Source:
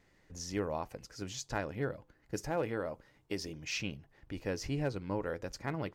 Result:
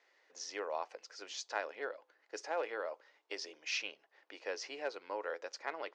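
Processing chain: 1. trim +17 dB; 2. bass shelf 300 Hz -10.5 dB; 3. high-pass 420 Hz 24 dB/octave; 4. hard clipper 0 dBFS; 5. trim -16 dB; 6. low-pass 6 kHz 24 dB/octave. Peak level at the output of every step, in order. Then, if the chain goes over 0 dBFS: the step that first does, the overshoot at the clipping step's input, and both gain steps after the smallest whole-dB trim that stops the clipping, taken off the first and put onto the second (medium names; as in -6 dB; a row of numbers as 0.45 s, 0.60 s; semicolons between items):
-2.5 dBFS, -2.5 dBFS, -4.5 dBFS, -4.5 dBFS, -20.5 dBFS, -20.5 dBFS; nothing clips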